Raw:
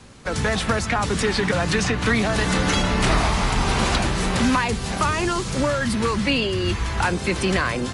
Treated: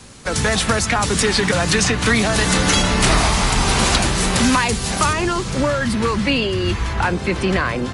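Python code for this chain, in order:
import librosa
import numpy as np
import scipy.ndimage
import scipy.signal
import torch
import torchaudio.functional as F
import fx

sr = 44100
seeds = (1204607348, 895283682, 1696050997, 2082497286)

y = fx.high_shelf(x, sr, hz=4900.0, db=fx.steps((0.0, 10.0), (5.12, -3.0), (6.92, -10.0)))
y = F.gain(torch.from_numpy(y), 3.0).numpy()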